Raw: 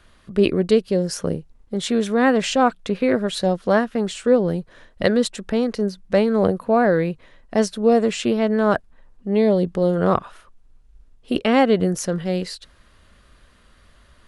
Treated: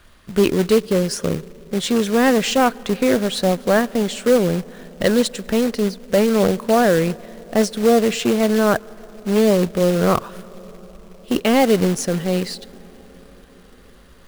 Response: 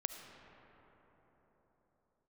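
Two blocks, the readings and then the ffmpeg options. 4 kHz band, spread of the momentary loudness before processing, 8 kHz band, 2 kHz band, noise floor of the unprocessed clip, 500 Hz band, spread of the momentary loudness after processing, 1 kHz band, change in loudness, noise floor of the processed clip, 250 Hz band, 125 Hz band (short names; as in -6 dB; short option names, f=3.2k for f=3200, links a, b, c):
+4.0 dB, 9 LU, +5.5 dB, +2.5 dB, -54 dBFS, +1.5 dB, 9 LU, +1.0 dB, +2.0 dB, -47 dBFS, +2.0 dB, +2.5 dB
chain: -filter_complex "[0:a]acontrast=90,asplit=2[a][b];[1:a]atrim=start_sample=2205,asetrate=31752,aresample=44100[c];[b][c]afir=irnorm=-1:irlink=0,volume=-17dB[d];[a][d]amix=inputs=2:normalize=0,acrusher=bits=3:mode=log:mix=0:aa=0.000001,volume=-5.5dB"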